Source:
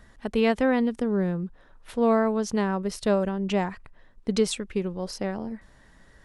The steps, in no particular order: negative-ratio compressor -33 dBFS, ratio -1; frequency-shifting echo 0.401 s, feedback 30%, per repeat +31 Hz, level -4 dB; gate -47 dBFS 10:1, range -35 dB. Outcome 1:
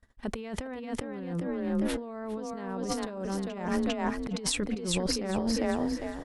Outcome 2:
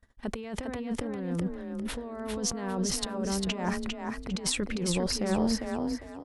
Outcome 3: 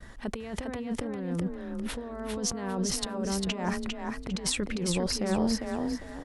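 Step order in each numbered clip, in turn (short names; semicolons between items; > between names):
frequency-shifting echo > gate > negative-ratio compressor; gate > negative-ratio compressor > frequency-shifting echo; negative-ratio compressor > frequency-shifting echo > gate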